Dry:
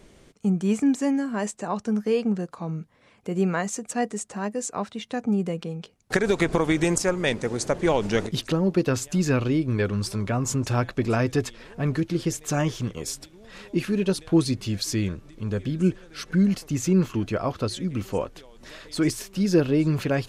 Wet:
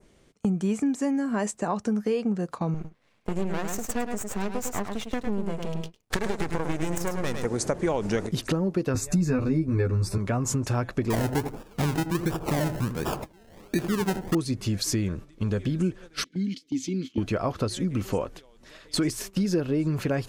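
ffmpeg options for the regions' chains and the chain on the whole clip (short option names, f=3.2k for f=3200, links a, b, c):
-filter_complex "[0:a]asettb=1/sr,asplit=3[a][b][c];[a]atrim=end=2.744[d];[b]atrim=start=2.74:end=7.45,asetpts=PTS-STARTPTS,afade=t=in:d=0.004:c=qsin,afade=t=out:st=4.706:d=0.004:c=qsin,aeval=exprs='max(val(0),0)':c=same,aecho=1:1:104:0.447,atrim=end_sample=207711[e];[c]atrim=start=7.446[f];[d][e]acrossfade=d=0.004:c1=hsin:c2=qsin[g];[g][f]acrossfade=d=0.004:c1=qsin:c2=hsin,asettb=1/sr,asplit=3[h][i][j];[h]atrim=end=8.944[k];[i]atrim=start=8.94:end=10.18,asetpts=PTS-STARTPTS,afade=t=in:d=0.004:c=qsin,afade=t=out:st=1.236:d=0.004:c=qsin,asuperstop=centerf=3100:order=8:qfactor=4.2,lowshelf=f=190:g=10,asplit=2[l][m];[m]adelay=12,volume=-2dB[n];[l][n]amix=inputs=2:normalize=0,atrim=end_sample=54684[o];[j]atrim=start=10.176[p];[k][o]acrossfade=d=0.004:c1=hsin:c2=qsin[q];[q][p]acrossfade=d=0.004:c1=qsin:c2=hsin,asettb=1/sr,asplit=3[r][s][t];[r]atrim=end=11.104[u];[s]atrim=start=11.1:end=14.35,asetpts=PTS-STARTPTS,afade=t=in:d=0.004:c=qsin,afade=t=out:st=3.246:d=0.004:c=qsin,acrusher=samples=30:mix=1:aa=0.000001:lfo=1:lforange=18:lforate=1.4,asplit=2[v][w];[w]adelay=80,lowpass=f=810:p=1,volume=-9.5dB,asplit=2[x][y];[y]adelay=80,lowpass=f=810:p=1,volume=0.25,asplit=2[z][aa];[aa]adelay=80,lowpass=f=810:p=1,volume=0.25[ab];[v][x][z][ab]amix=inputs=4:normalize=0,atrim=end_sample=143325[ac];[t]atrim=start=14.346[ad];[u][ac]acrossfade=d=0.004:c1=hsin:c2=qsin[ae];[ae][ad]acrossfade=d=0.004:c1=qsin:c2=hsin,asettb=1/sr,asplit=3[af][ag][ah];[af]atrim=end=16.244[ai];[ag]atrim=start=16.24:end=17.18,asetpts=PTS-STARTPTS,afade=t=in:d=0.004:c=qsin,afade=t=out:st=0.936:d=0.004:c=qsin,asplit=3[aj][ak][al];[aj]bandpass=f=270:t=q:w=8,volume=0dB[am];[ak]bandpass=f=2.29k:t=q:w=8,volume=-6dB[an];[al]bandpass=f=3.01k:t=q:w=8,volume=-9dB[ao];[am][an][ao]amix=inputs=3:normalize=0,highshelf=f=3.1k:t=q:w=1.5:g=11.5[ap];[ah]atrim=start=17.176[aq];[ai][ap]acrossfade=d=0.004:c1=hsin:c2=qsin[ar];[ar][aq]acrossfade=d=0.004:c1=qsin:c2=hsin,agate=range=-14dB:threshold=-39dB:ratio=16:detection=peak,adynamicequalizer=threshold=0.00447:dfrequency=3400:dqfactor=1.1:tfrequency=3400:tqfactor=1.1:attack=5:release=100:ratio=0.375:range=3.5:mode=cutabove:tftype=bell,acompressor=threshold=-32dB:ratio=4,volume=7.5dB"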